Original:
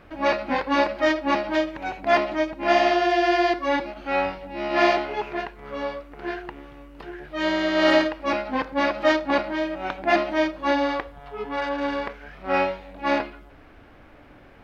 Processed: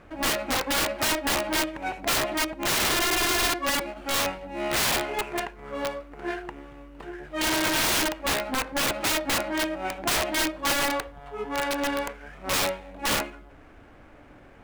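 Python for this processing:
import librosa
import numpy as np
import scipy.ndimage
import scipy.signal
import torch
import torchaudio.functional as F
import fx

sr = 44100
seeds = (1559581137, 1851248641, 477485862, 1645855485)

y = scipy.ndimage.median_filter(x, 9, mode='constant')
y = fx.dynamic_eq(y, sr, hz=2900.0, q=1.0, threshold_db=-38.0, ratio=4.0, max_db=4)
y = (np.mod(10.0 ** (18.0 / 20.0) * y + 1.0, 2.0) - 1.0) / 10.0 ** (18.0 / 20.0)
y = F.gain(torch.from_numpy(y), -1.0).numpy()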